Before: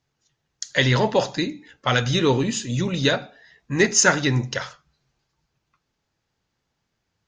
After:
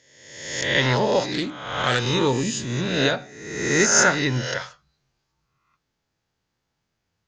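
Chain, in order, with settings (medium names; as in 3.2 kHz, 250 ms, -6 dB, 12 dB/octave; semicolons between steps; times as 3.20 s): reverse spectral sustain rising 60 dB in 1.02 s; 1.32–1.99 s: loudspeaker Doppler distortion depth 0.19 ms; trim -4 dB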